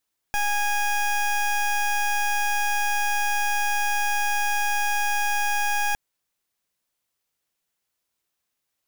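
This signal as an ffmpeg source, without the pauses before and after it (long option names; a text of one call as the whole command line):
ffmpeg -f lavfi -i "aevalsrc='0.0708*(2*lt(mod(825*t,1),0.2)-1)':duration=5.61:sample_rate=44100" out.wav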